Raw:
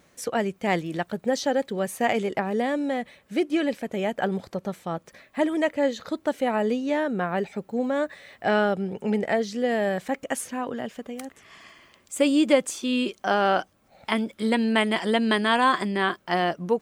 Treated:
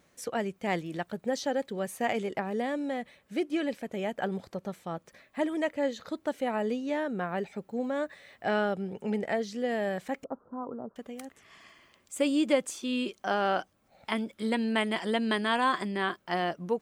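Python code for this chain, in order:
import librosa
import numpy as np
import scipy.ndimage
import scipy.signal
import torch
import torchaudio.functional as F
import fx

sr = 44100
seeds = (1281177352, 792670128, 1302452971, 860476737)

y = fx.cheby_ripple(x, sr, hz=1400.0, ripple_db=3, at=(10.24, 10.96))
y = F.gain(torch.from_numpy(y), -6.0).numpy()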